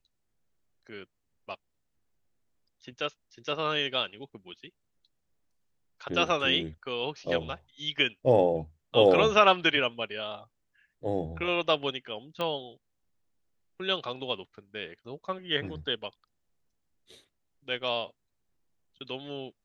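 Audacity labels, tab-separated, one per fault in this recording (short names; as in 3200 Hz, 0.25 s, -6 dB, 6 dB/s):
12.410000	12.410000	pop -19 dBFS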